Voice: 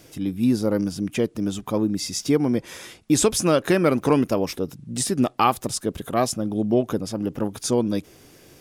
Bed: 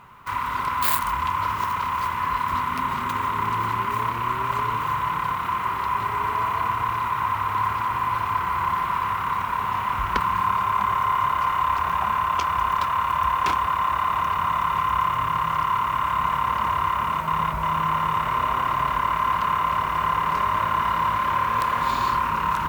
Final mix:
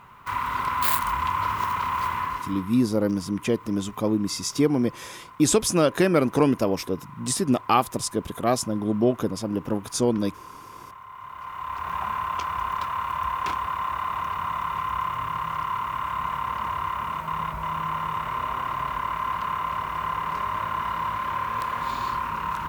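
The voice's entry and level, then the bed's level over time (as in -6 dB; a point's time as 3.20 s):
2.30 s, -1.0 dB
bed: 2.17 s -1 dB
2.87 s -21.5 dB
11.08 s -21.5 dB
11.96 s -5.5 dB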